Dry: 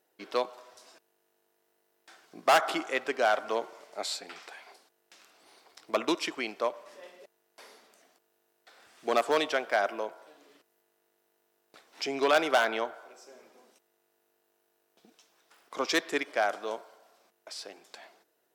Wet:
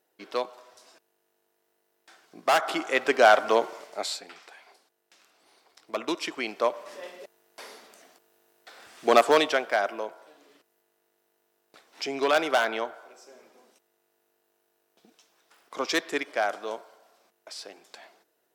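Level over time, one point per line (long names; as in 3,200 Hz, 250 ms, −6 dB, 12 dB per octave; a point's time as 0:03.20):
0:02.62 0 dB
0:03.13 +8.5 dB
0:03.74 +8.5 dB
0:04.38 −3 dB
0:05.95 −3 dB
0:06.92 +8 dB
0:09.18 +8 dB
0:09.85 +1 dB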